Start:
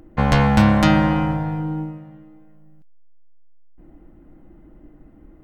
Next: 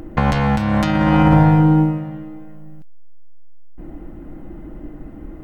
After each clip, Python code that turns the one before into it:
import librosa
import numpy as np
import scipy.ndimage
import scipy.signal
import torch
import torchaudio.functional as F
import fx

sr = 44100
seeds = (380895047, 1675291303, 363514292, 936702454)

y = fx.over_compress(x, sr, threshold_db=-22.0, ratio=-1.0)
y = y * librosa.db_to_amplitude(8.0)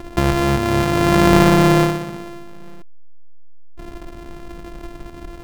y = np.r_[np.sort(x[:len(x) // 128 * 128].reshape(-1, 128), axis=1).ravel(), x[len(x) // 128 * 128:]]
y = fx.high_shelf(y, sr, hz=3700.0, db=-7.5)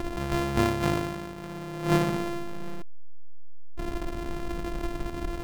y = fx.over_compress(x, sr, threshold_db=-21.0, ratio=-0.5)
y = y * librosa.db_to_amplitude(-4.0)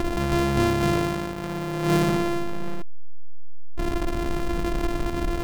y = fx.leveller(x, sr, passes=3)
y = y * librosa.db_to_amplitude(-3.5)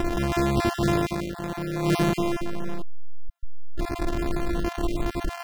y = fx.spec_dropout(x, sr, seeds[0], share_pct=24)